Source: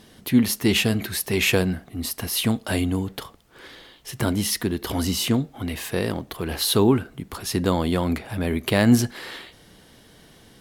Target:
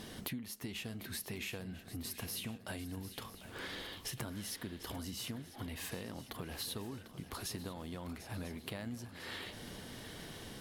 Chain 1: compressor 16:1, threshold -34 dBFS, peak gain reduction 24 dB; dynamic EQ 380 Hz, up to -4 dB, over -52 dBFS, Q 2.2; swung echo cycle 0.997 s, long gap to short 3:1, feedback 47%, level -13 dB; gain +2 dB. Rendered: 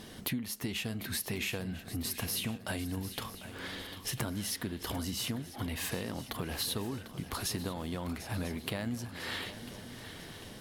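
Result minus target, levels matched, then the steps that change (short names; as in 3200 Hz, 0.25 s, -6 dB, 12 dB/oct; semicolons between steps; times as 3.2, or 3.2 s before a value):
compressor: peak gain reduction -7 dB
change: compressor 16:1, threshold -41.5 dBFS, peak gain reduction 31 dB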